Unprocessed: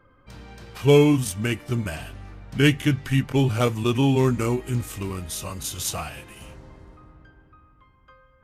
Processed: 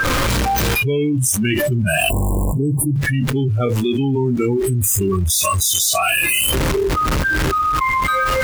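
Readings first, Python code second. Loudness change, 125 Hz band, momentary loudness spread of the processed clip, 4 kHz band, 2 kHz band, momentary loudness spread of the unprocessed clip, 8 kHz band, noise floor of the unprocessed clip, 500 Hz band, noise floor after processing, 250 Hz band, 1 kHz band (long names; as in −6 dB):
+5.5 dB, +5.0 dB, 4 LU, +10.0 dB, +12.5 dB, 17 LU, +15.0 dB, −58 dBFS, +4.0 dB, −19 dBFS, +3.5 dB, +14.5 dB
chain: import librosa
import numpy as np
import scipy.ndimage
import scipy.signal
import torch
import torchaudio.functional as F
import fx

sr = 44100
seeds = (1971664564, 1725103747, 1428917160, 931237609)

y = x + 0.5 * 10.0 ** (-22.0 / 20.0) * np.sign(x)
y = fx.rider(y, sr, range_db=4, speed_s=0.5)
y = fx.spec_erase(y, sr, start_s=2.1, length_s=0.86, low_hz=1100.0, high_hz=7100.0)
y = fx.dynamic_eq(y, sr, hz=730.0, q=3.3, threshold_db=-42.0, ratio=4.0, max_db=-4)
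y = fx.noise_reduce_blind(y, sr, reduce_db=26)
y = fx.env_flatten(y, sr, amount_pct=100)
y = F.gain(torch.from_numpy(y), -2.5).numpy()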